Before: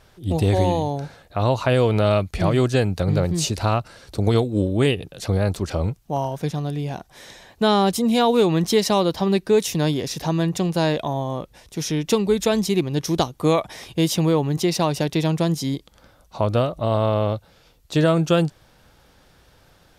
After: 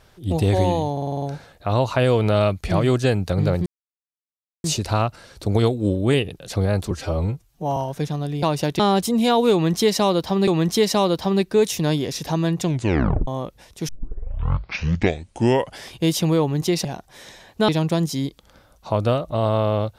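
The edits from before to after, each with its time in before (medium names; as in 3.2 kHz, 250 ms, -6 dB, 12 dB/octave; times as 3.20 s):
0.92 s: stutter 0.05 s, 7 plays
3.36 s: insert silence 0.98 s
5.63–6.20 s: stretch 1.5×
6.86–7.70 s: swap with 14.80–15.17 s
8.43–9.38 s: loop, 2 plays
10.58 s: tape stop 0.65 s
11.84 s: tape start 2.07 s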